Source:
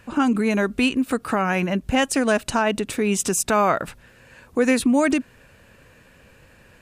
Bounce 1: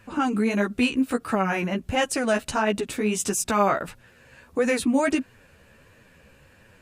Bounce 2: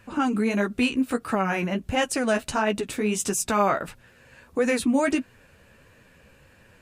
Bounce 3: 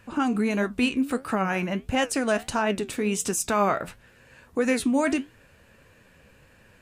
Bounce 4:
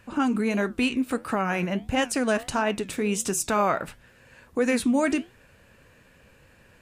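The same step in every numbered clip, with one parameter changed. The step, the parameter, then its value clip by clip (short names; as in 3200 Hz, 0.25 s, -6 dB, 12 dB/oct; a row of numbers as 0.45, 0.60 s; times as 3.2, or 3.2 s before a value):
flange, regen: +1, -22, +69, -75%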